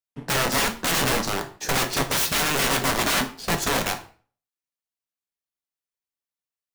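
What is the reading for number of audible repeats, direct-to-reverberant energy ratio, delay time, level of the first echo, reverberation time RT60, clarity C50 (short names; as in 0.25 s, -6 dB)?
none, 4.5 dB, none, none, 0.40 s, 13.0 dB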